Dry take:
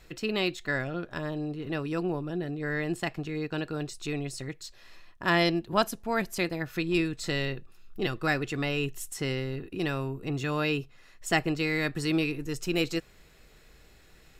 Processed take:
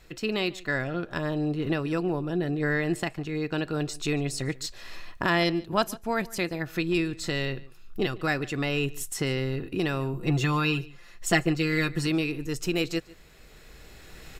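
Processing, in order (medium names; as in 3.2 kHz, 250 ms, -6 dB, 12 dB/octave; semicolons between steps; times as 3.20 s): recorder AGC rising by 7.9 dB/s; 10.13–12.07 s: comb 5.8 ms, depth 72%; echo from a far wall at 25 m, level -21 dB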